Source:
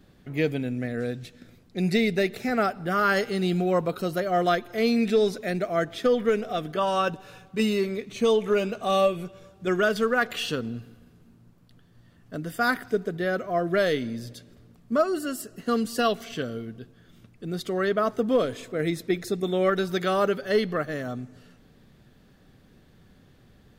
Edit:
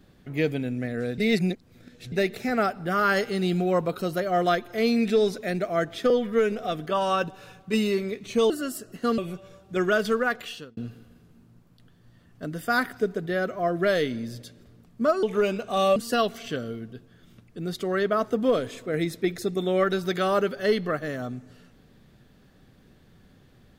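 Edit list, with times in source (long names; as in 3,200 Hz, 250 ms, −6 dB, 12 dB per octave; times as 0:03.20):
0:01.18–0:02.12: reverse
0:06.10–0:06.38: time-stretch 1.5×
0:08.36–0:09.09: swap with 0:15.14–0:15.82
0:10.06–0:10.68: fade out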